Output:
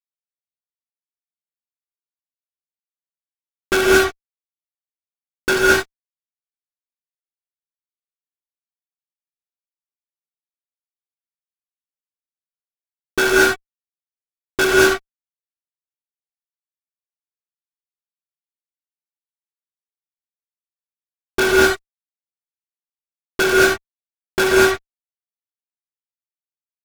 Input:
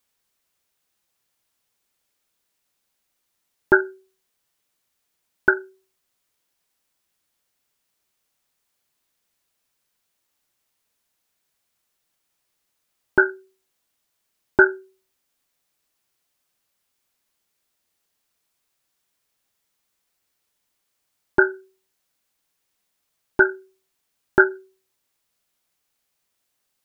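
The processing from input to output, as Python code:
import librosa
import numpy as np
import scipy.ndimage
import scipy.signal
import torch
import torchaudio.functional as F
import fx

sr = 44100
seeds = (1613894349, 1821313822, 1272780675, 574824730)

y = fx.fuzz(x, sr, gain_db=41.0, gate_db=-33.0)
y = fx.rev_gated(y, sr, seeds[0], gate_ms=250, shape='rising', drr_db=-5.0)
y = F.gain(torch.from_numpy(y), -1.5).numpy()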